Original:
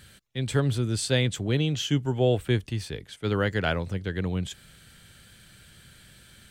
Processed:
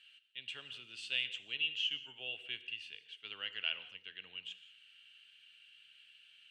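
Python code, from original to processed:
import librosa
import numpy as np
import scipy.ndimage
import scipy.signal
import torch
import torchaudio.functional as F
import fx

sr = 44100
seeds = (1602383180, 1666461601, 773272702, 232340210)

y = fx.bandpass_q(x, sr, hz=2800.0, q=19.0)
y = fx.rev_gated(y, sr, seeds[0], gate_ms=210, shape='flat', drr_db=12.0)
y = y * librosa.db_to_amplitude(9.0)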